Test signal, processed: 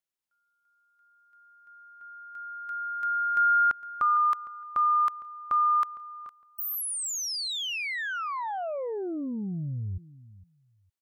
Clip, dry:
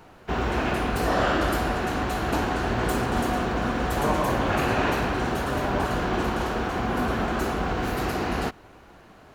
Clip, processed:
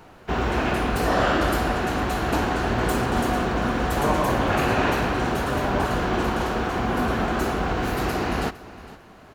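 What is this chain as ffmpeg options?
-af "aecho=1:1:459|918:0.126|0.0227,volume=1.26"

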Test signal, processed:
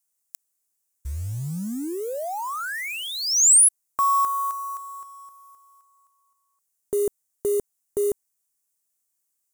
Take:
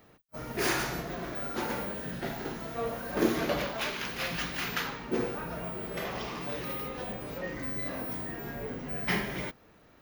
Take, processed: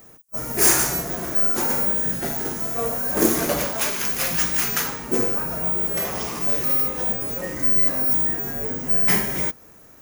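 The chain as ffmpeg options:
-af "acrusher=bits=6:mode=log:mix=0:aa=0.000001,highshelf=f=5400:t=q:w=1.5:g=13,volume=2.11"

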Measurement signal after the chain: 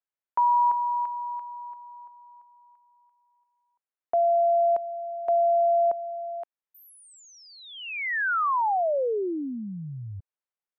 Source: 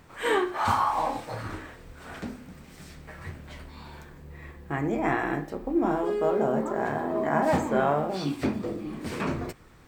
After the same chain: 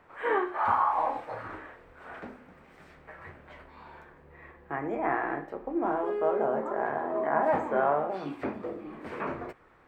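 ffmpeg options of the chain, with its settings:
-filter_complex "[0:a]acrossover=split=370 2400:gain=0.224 1 0.1[s0][s1][s2];[s0][s1][s2]amix=inputs=3:normalize=0,acrossover=split=2500[s3][s4];[s4]acompressor=threshold=0.00224:ratio=4:attack=1:release=60[s5];[s3][s5]amix=inputs=2:normalize=0"

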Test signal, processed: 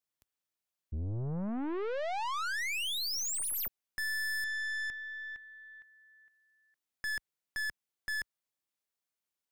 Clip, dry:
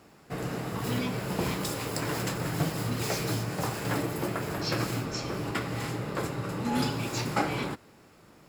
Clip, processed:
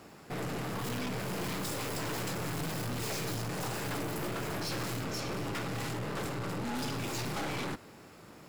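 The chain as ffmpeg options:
-af "highpass=45,lowshelf=f=69:g=-3,acontrast=24,aeval=exprs='(tanh(50.1*val(0)+0.4)-tanh(0.4))/50.1':c=same"

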